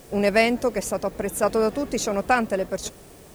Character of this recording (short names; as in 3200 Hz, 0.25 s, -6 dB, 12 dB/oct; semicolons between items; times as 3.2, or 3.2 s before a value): tremolo saw down 0.7 Hz, depth 40%; a quantiser's noise floor 10-bit, dither triangular